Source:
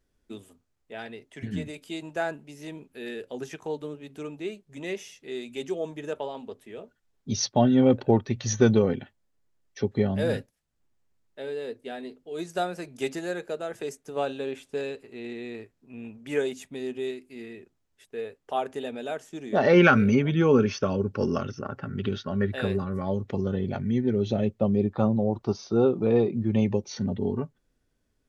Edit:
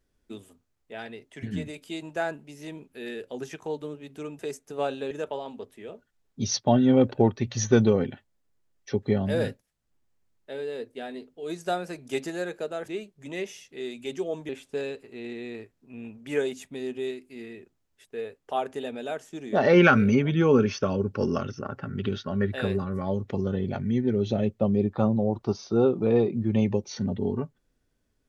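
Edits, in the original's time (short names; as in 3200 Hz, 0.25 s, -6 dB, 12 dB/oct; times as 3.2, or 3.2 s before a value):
4.39–6 swap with 13.77–14.49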